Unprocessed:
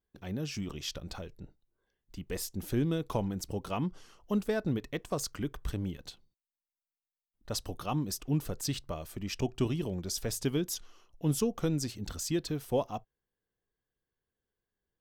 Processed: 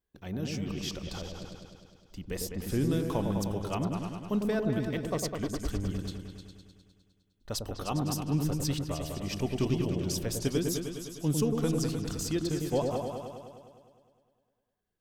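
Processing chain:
echo whose low-pass opens from repeat to repeat 102 ms, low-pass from 750 Hz, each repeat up 2 octaves, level −3 dB

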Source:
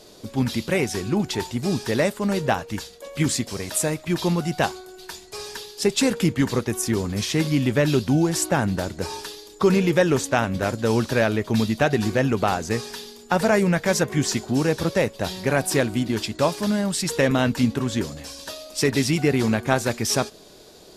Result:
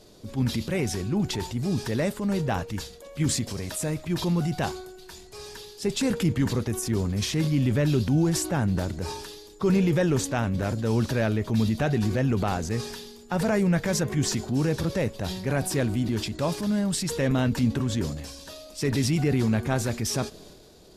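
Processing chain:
low-shelf EQ 220 Hz +10.5 dB
transient designer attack −3 dB, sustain +6 dB
level −7.5 dB

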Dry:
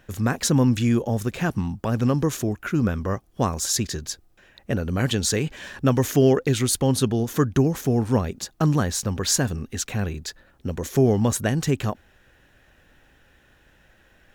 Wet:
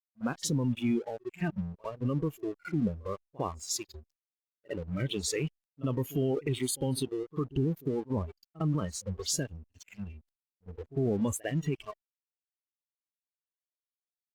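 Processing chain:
noise reduction from a noise print of the clip's start 25 dB
low-pass that shuts in the quiet parts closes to 1,200 Hz, open at −20.5 dBFS
dead-zone distortion −44 dBFS
low-shelf EQ 270 Hz +3.5 dB
backwards echo 54 ms −24 dB
brickwall limiter −14.5 dBFS, peak gain reduction 9.5 dB
level −6.5 dB
Opus 64 kbit/s 48,000 Hz

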